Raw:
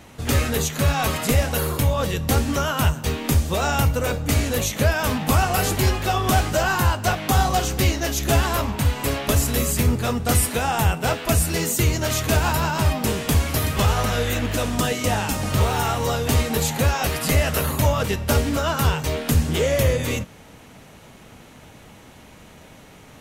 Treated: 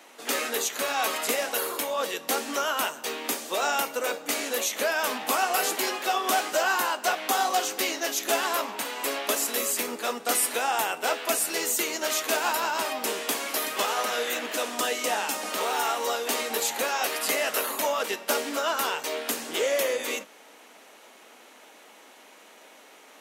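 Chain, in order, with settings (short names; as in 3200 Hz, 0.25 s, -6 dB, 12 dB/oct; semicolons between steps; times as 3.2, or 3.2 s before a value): Bessel high-pass 460 Hz, order 8; gain -2 dB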